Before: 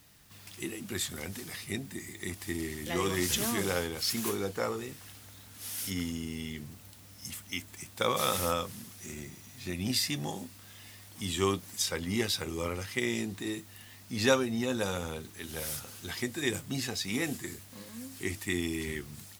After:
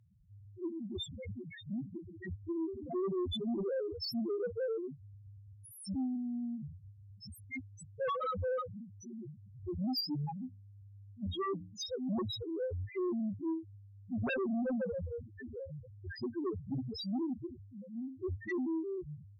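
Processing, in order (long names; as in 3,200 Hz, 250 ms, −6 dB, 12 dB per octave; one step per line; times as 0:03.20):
spectral peaks only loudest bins 1
sine wavefolder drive 12 dB, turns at −23.5 dBFS
0:10.22–0:11.79: mains-hum notches 60/120/180/240/300 Hz
level −7.5 dB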